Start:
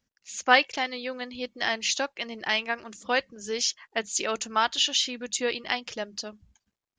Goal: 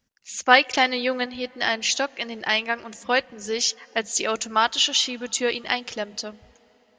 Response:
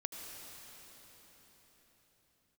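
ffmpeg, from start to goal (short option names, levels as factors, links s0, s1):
-filter_complex "[0:a]asettb=1/sr,asplit=3[s0][s1][s2];[s0]atrim=end=0.654[s3];[s1]atrim=start=0.65:end=1.26,asetpts=PTS-STARTPTS,afade=t=in:d=0.004:c=qsin,afade=t=out:st=0.606:d=0.004:c=qsin,acontrast=36[s4];[s2]atrim=start=1.256[s5];[s3][s4]acrossfade=d=0.004:c1=hsin:c2=qsin[s6];[s6][s5]acrossfade=d=0.004:c1=qsin:c2=hsin,asplit=2[s7][s8];[s8]lowpass=f=2100:p=1[s9];[1:a]atrim=start_sample=2205[s10];[s9][s10]afir=irnorm=-1:irlink=0,volume=0.1[s11];[s7][s11]amix=inputs=2:normalize=0,volume=1.5"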